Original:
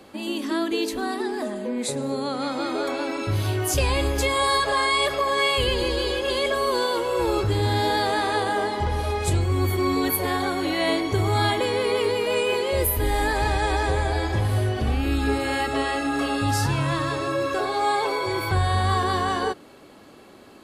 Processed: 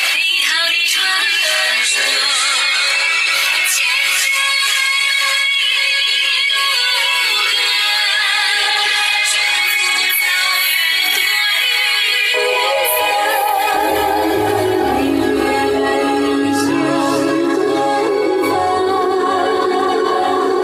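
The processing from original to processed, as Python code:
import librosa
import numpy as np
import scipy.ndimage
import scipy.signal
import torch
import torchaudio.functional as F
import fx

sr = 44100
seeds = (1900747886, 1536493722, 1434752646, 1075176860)

y = fx.highpass_res(x, sr, hz=fx.steps((0.0, 2300.0), (12.34, 710.0), (13.74, 340.0)), q=2.7)
y = fx.rider(y, sr, range_db=5, speed_s=0.5)
y = fx.echo_diffused(y, sr, ms=547, feedback_pct=55, wet_db=-5)
y = fx.chorus_voices(y, sr, voices=6, hz=0.21, base_ms=27, depth_ms=1.7, mix_pct=65)
y = fx.env_flatten(y, sr, amount_pct=100)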